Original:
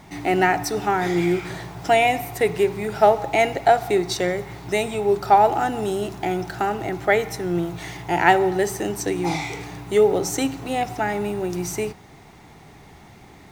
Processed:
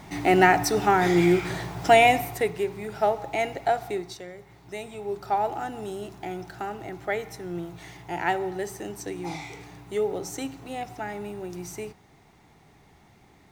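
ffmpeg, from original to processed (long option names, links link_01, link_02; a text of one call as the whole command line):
ffmpeg -i in.wav -af "volume=10dB,afade=type=out:start_time=2.11:duration=0.42:silence=0.354813,afade=type=out:start_time=3.82:duration=0.43:silence=0.281838,afade=type=in:start_time=4.25:duration=1.22:silence=0.354813" out.wav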